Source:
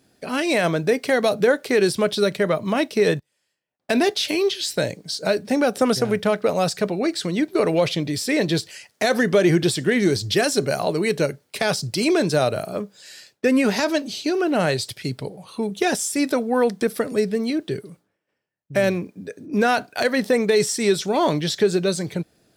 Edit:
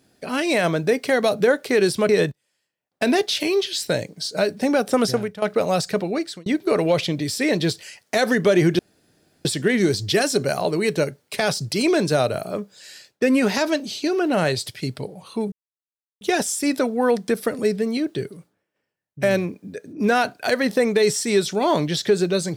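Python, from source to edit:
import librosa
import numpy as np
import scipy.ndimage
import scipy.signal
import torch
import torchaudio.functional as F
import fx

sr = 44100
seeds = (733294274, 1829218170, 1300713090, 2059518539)

y = fx.edit(x, sr, fx.cut(start_s=2.09, length_s=0.88),
    fx.fade_out_to(start_s=6.04, length_s=0.26, curve='qua', floor_db=-15.0),
    fx.fade_out_span(start_s=6.85, length_s=0.49, curve='qsin'),
    fx.insert_room_tone(at_s=9.67, length_s=0.66),
    fx.insert_silence(at_s=15.74, length_s=0.69), tone=tone)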